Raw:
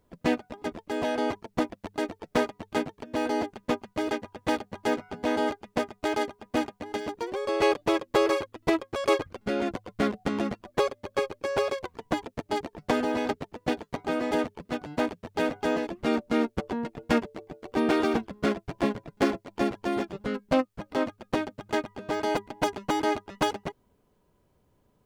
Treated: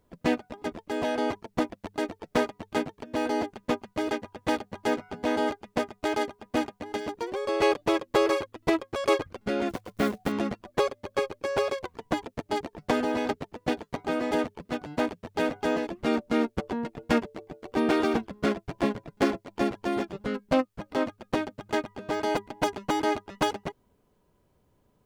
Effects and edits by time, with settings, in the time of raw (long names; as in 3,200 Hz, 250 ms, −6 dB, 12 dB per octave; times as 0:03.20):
0:09.69–0:10.33: one scale factor per block 5 bits